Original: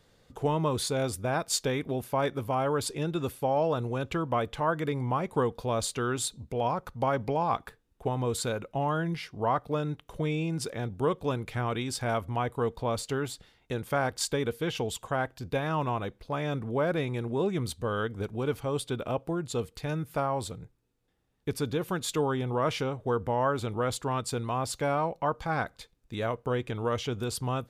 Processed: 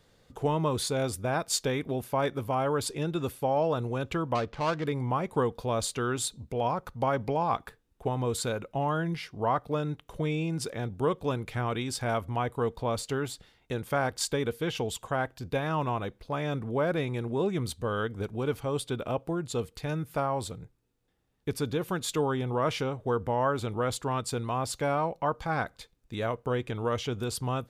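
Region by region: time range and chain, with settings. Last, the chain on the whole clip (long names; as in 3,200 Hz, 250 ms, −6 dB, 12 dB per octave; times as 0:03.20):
0:04.35–0:04.87: gap after every zero crossing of 0.15 ms + high-frequency loss of the air 120 metres
whole clip: no processing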